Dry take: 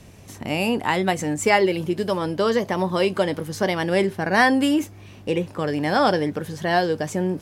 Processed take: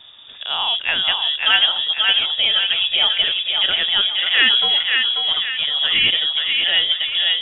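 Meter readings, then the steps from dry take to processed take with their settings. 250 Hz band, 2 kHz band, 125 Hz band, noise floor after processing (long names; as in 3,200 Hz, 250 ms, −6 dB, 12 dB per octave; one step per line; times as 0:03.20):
−21.5 dB, +5.5 dB, below −15 dB, −39 dBFS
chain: voice inversion scrambler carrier 3,600 Hz
feedback echo with a high-pass in the loop 539 ms, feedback 47%, high-pass 600 Hz, level −3 dB
level +1.5 dB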